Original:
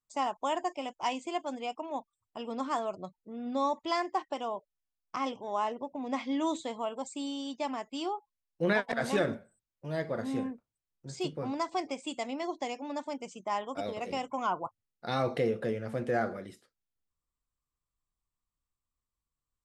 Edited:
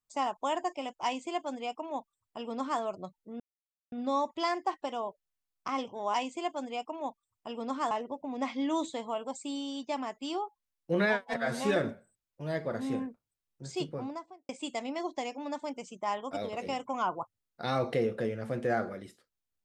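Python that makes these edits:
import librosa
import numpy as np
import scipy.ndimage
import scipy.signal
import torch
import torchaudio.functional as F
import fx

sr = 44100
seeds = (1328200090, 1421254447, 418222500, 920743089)

y = fx.studio_fade_out(x, sr, start_s=11.25, length_s=0.68)
y = fx.edit(y, sr, fx.duplicate(start_s=1.04, length_s=1.77, to_s=5.62),
    fx.insert_silence(at_s=3.4, length_s=0.52),
    fx.stretch_span(start_s=8.66, length_s=0.54, factor=1.5), tone=tone)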